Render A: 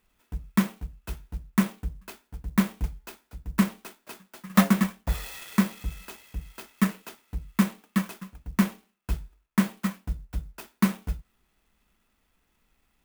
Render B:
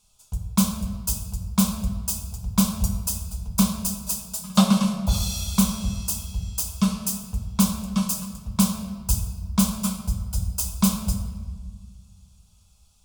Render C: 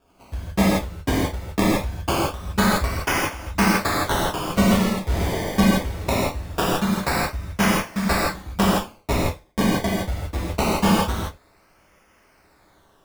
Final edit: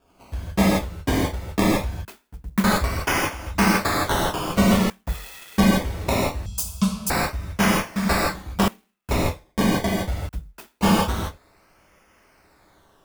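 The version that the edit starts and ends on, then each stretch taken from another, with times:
C
0:02.05–0:02.64: punch in from A
0:04.90–0:05.58: punch in from A
0:06.46–0:07.10: punch in from B
0:08.68–0:09.11: punch in from A
0:10.29–0:10.81: punch in from A

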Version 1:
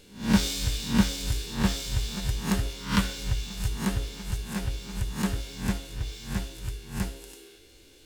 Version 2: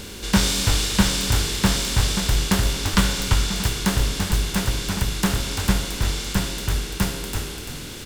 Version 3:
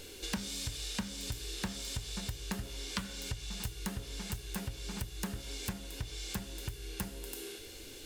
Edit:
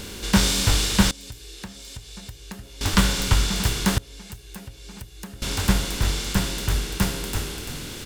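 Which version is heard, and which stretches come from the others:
2
0:01.11–0:02.81: punch in from 3
0:03.98–0:05.42: punch in from 3
not used: 1

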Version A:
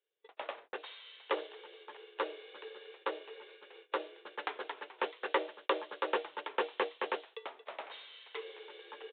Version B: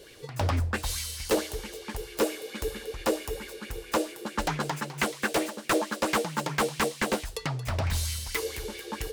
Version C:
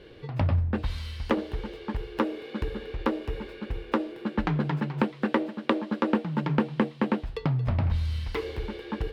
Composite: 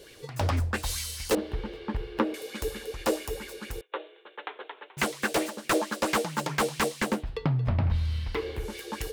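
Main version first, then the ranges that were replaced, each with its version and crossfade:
B
0:01.35–0:02.34: punch in from C
0:03.81–0:04.97: punch in from A
0:07.12–0:08.66: punch in from C, crossfade 0.24 s

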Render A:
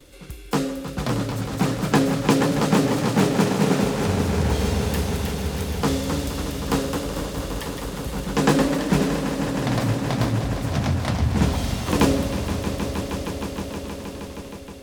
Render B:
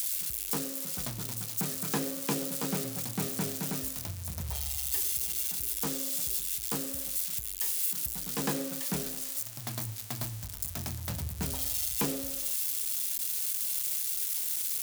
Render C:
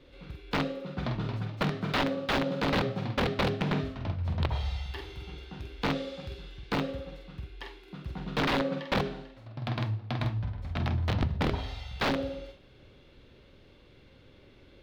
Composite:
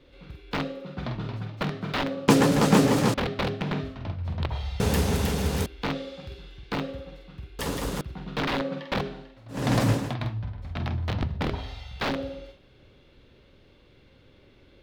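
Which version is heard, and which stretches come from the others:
C
0:02.28–0:03.14: punch in from A
0:04.80–0:05.66: punch in from A
0:07.59–0:08.01: punch in from A
0:09.60–0:10.04: punch in from A, crossfade 0.24 s
not used: B

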